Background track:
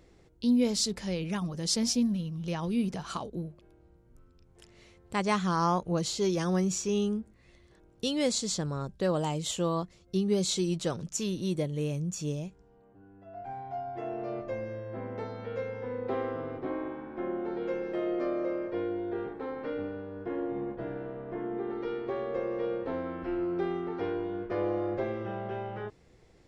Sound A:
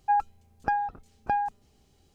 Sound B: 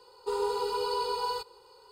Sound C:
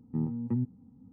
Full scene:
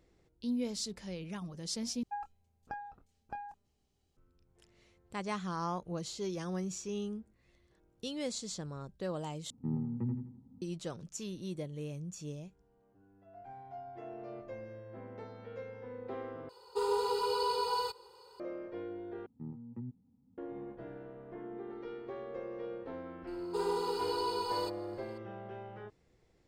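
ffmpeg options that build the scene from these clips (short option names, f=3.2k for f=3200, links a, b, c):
-filter_complex "[3:a]asplit=2[a][b];[2:a]asplit=2[c][d];[0:a]volume=-9.5dB[e];[1:a]asplit=2[f][g];[g]adelay=25,volume=-12.5dB[h];[f][h]amix=inputs=2:normalize=0[i];[a]aecho=1:1:84|168|252|336|420:0.501|0.19|0.0724|0.0275|0.0105[j];[c]highpass=49[k];[e]asplit=5[l][m][n][o][p];[l]atrim=end=2.034[q];[i]atrim=end=2.14,asetpts=PTS-STARTPTS,volume=-15dB[r];[m]atrim=start=4.166:end=9.504[s];[j]atrim=end=1.12,asetpts=PTS-STARTPTS,volume=-5dB[t];[n]atrim=start=10.616:end=16.494[u];[k]atrim=end=1.91,asetpts=PTS-STARTPTS,volume=-1.5dB[v];[o]atrim=start=18.396:end=19.264[w];[b]atrim=end=1.12,asetpts=PTS-STARTPTS,volume=-13.5dB[x];[p]atrim=start=20.376[y];[d]atrim=end=1.91,asetpts=PTS-STARTPTS,volume=-4dB,afade=t=in:d=0.004:c=hsin,afade=t=out:st=1.906:d=0.004:c=hsin,adelay=23270[z];[q][r]acrossfade=d=0.004:c1=hsin:c2=hsin[aa];[aa][s]acrossfade=d=0.004:c1=hsin:c2=hsin[ab];[ab][t]acrossfade=d=0.004:c1=hsin:c2=hsin[ac];[ac][u]acrossfade=d=0.004:c1=hsin:c2=hsin[ad];[ad][v]acrossfade=d=0.004:c1=hsin:c2=hsin[ae];[ae][w]acrossfade=d=0.004:c1=hsin:c2=hsin[af];[af][x]acrossfade=d=0.004:c1=hsin:c2=hsin[ag];[ag][y]acrossfade=d=0.004:c1=hsin:c2=hsin[ah];[ah][z]amix=inputs=2:normalize=0"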